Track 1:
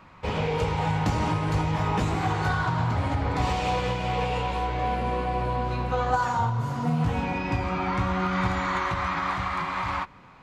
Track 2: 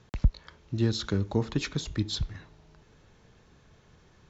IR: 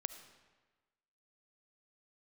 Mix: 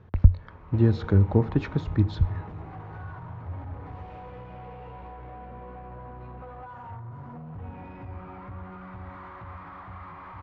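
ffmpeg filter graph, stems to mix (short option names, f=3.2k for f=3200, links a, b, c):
-filter_complex "[0:a]acompressor=threshold=-35dB:ratio=6,asoftclip=type=tanh:threshold=-36.5dB,adelay=500,volume=-3.5dB,asplit=2[a][b];[b]volume=-7dB[c];[1:a]volume=3dB,asplit=2[d][e];[e]volume=-11.5dB[f];[2:a]atrim=start_sample=2205[g];[c][f]amix=inputs=2:normalize=0[h];[h][g]afir=irnorm=-1:irlink=0[i];[a][d][i]amix=inputs=3:normalize=0,lowpass=1.5k,equalizer=f=89:t=o:w=0.28:g=13"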